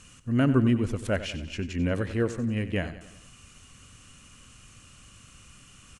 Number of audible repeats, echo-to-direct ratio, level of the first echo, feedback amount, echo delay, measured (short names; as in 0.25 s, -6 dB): 4, -12.0 dB, -13.5 dB, 52%, 93 ms